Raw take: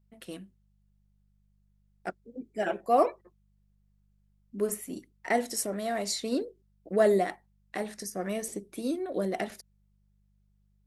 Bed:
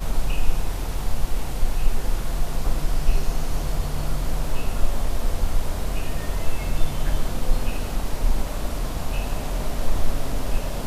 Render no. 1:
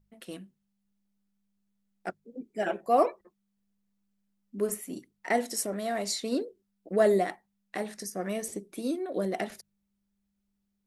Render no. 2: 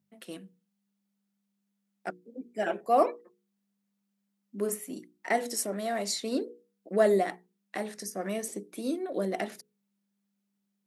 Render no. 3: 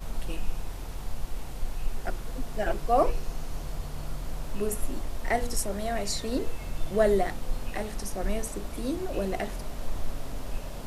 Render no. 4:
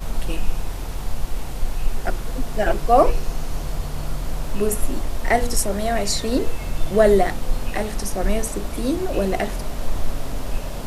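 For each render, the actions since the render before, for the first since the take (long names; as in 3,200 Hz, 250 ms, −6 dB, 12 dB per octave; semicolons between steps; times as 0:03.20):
hum removal 50 Hz, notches 3
high-pass filter 150 Hz 24 dB per octave; mains-hum notches 60/120/180/240/300/360/420/480 Hz
mix in bed −10 dB
level +8.5 dB; brickwall limiter −3 dBFS, peak gain reduction 1.5 dB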